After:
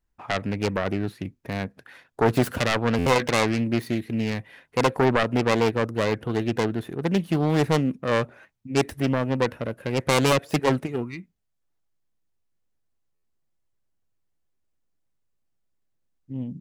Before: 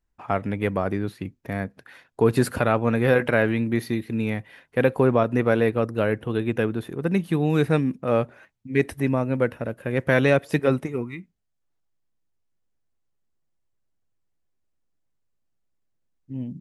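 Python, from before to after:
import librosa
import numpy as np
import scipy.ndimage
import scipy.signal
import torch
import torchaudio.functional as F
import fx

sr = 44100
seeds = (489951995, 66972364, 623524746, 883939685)

y = fx.self_delay(x, sr, depth_ms=0.59)
y = fx.buffer_glitch(y, sr, at_s=(2.98, 13.15), block=512, repeats=6)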